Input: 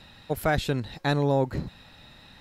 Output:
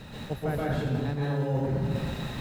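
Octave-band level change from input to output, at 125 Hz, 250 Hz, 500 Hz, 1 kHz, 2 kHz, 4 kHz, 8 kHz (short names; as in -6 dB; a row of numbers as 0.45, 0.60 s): +1.5 dB, -0.5 dB, -3.5 dB, -5.5 dB, -6.0 dB, -5.5 dB, n/a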